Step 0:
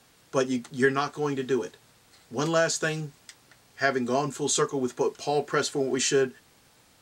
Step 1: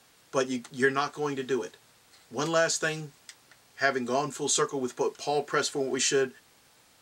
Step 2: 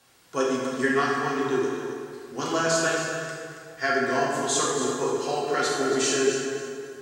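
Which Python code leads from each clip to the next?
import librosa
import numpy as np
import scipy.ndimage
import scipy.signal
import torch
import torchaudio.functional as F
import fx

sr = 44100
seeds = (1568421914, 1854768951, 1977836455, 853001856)

y1 = fx.low_shelf(x, sr, hz=330.0, db=-6.5)
y2 = fx.echo_feedback(y1, sr, ms=276, feedback_pct=26, wet_db=-10.0)
y2 = fx.rev_plate(y2, sr, seeds[0], rt60_s=2.1, hf_ratio=0.6, predelay_ms=0, drr_db=-4.5)
y2 = F.gain(torch.from_numpy(y2), -2.5).numpy()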